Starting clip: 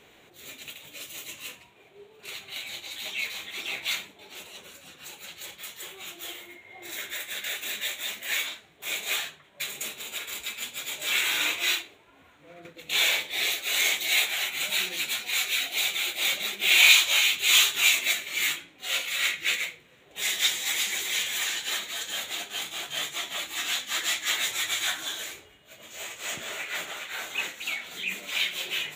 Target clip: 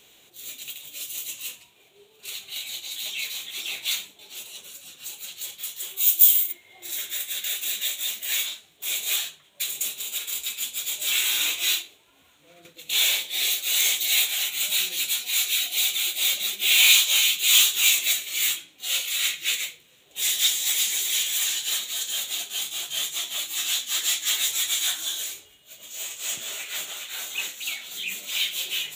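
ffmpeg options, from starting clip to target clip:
ffmpeg -i in.wav -filter_complex "[0:a]aexciter=amount=2:drive=9.1:freq=2800,asplit=3[link_01][link_02][link_03];[link_01]afade=type=out:start_time=5.96:duration=0.02[link_04];[link_02]aemphasis=mode=production:type=riaa,afade=type=in:start_time=5.96:duration=0.02,afade=type=out:start_time=6.51:duration=0.02[link_05];[link_03]afade=type=in:start_time=6.51:duration=0.02[link_06];[link_04][link_05][link_06]amix=inputs=3:normalize=0,volume=-5.5dB" out.wav

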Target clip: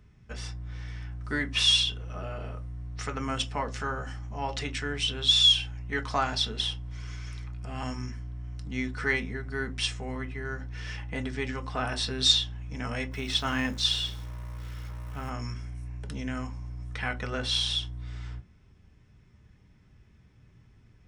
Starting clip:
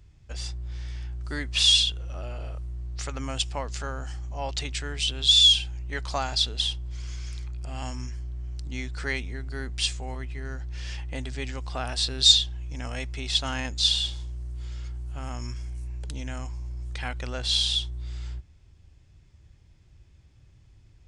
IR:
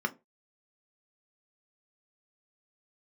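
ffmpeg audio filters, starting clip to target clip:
-filter_complex "[0:a]asplit=3[link_01][link_02][link_03];[link_01]afade=type=out:start_time=13.11:duration=0.02[link_04];[link_02]acrusher=bits=9:dc=4:mix=0:aa=0.000001,afade=type=in:start_time=13.11:duration=0.02,afade=type=out:start_time=15.29:duration=0.02[link_05];[link_03]afade=type=in:start_time=15.29:duration=0.02[link_06];[link_04][link_05][link_06]amix=inputs=3:normalize=0[link_07];[1:a]atrim=start_sample=2205[link_08];[link_07][link_08]afir=irnorm=-1:irlink=0,volume=-4dB"

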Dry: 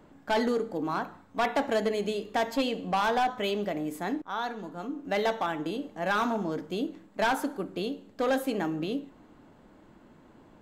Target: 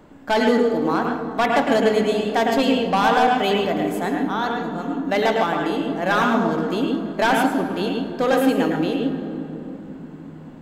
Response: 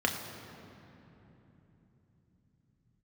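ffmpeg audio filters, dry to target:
-filter_complex "[0:a]asplit=2[link_01][link_02];[1:a]atrim=start_sample=2205,adelay=106[link_03];[link_02][link_03]afir=irnorm=-1:irlink=0,volume=-11dB[link_04];[link_01][link_04]amix=inputs=2:normalize=0,volume=7dB"

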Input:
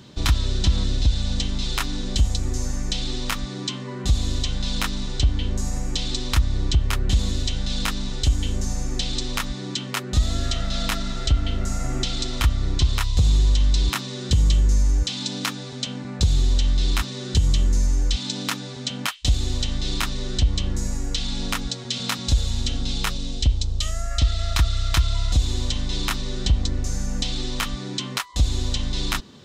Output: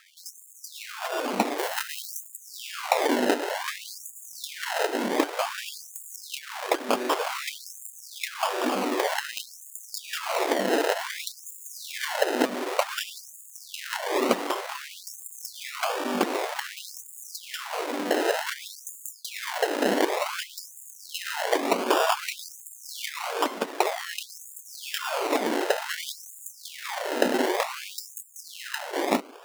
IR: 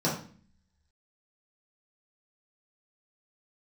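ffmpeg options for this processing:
-filter_complex "[0:a]dynaudnorm=framelen=390:gausssize=9:maxgain=11.5dB,asplit=2[link_01][link_02];[link_02]highpass=frequency=720:poles=1,volume=12dB,asoftclip=type=tanh:threshold=-1.5dB[link_03];[link_01][link_03]amix=inputs=2:normalize=0,lowpass=frequency=5600:poles=1,volume=-6dB,acrusher=samples=30:mix=1:aa=0.000001:lfo=1:lforange=18:lforate=0.67,highshelf=frequency=4400:gain=-4.5,acompressor=threshold=-15dB:ratio=12,asettb=1/sr,asplit=3[link_04][link_05][link_06];[link_04]atrim=end=1.584[link_07];[link_05]atrim=start=1.58:end=2.27,asetpts=PTS-STARTPTS,afade=type=in:duration=0.004:curve=qsin,afade=type=out:start_time=0.686:duration=0.004:curve=qsin,highshelf=frequency=9900:gain=9.5[link_08];[link_06]atrim=start=2.266[link_09];[link_07][link_08]acrossfade=duration=0.004:curve1=hsin:curve2=qsin[link_10];[link_10][link_09]acrossfade=duration=0.004:curve1=qsin:curve2=hsin,afftfilt=real='re*gte(b*sr/1024,210*pow(6700/210,0.5+0.5*sin(2*PI*0.54*pts/sr)))':imag='im*gte(b*sr/1024,210*pow(6700/210,0.5+0.5*sin(2*PI*0.54*pts/sr)))':win_size=1024:overlap=0.75"

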